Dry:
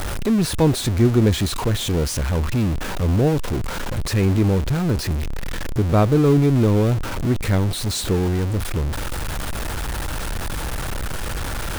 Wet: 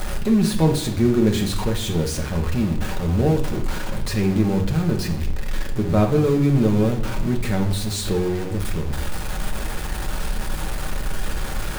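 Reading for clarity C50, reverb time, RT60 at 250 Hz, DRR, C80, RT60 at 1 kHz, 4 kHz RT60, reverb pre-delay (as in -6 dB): 9.0 dB, 0.70 s, 0.90 s, 1.0 dB, 12.5 dB, 0.70 s, 0.55 s, 5 ms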